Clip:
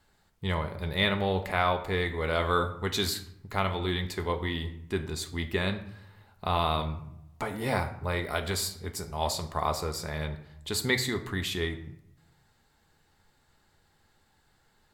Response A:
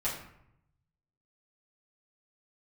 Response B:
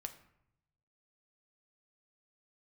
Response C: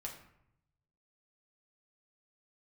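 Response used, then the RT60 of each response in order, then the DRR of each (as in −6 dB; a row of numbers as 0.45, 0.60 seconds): B; 0.75, 0.75, 0.75 seconds; −9.5, 6.0, −1.5 decibels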